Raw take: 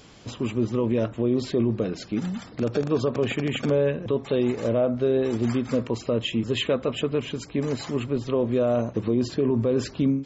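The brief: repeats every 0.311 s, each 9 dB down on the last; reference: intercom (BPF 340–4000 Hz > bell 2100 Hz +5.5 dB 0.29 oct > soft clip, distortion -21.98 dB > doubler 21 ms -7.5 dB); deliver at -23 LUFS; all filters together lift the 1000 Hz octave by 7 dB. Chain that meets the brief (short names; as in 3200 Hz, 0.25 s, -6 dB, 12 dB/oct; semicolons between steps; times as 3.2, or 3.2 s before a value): BPF 340–4000 Hz; bell 1000 Hz +9 dB; bell 2100 Hz +5.5 dB 0.29 oct; feedback echo 0.311 s, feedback 35%, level -9 dB; soft clip -13.5 dBFS; doubler 21 ms -7.5 dB; gain +3 dB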